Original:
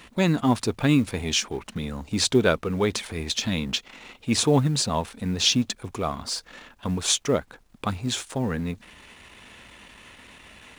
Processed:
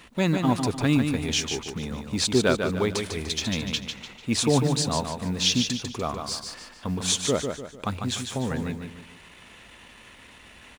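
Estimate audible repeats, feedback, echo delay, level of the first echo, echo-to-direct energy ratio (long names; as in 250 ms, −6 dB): 4, 39%, 148 ms, −6.0 dB, −5.5 dB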